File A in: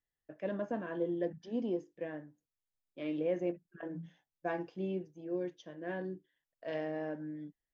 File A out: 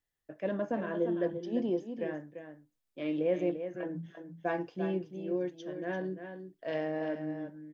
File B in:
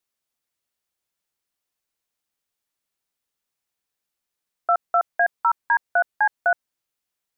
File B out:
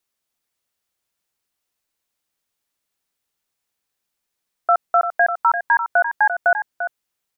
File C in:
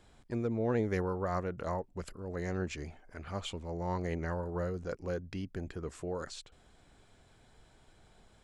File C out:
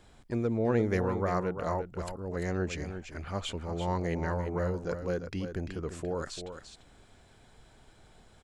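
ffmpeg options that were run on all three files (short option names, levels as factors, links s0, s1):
-af "aecho=1:1:344:0.355,volume=1.5"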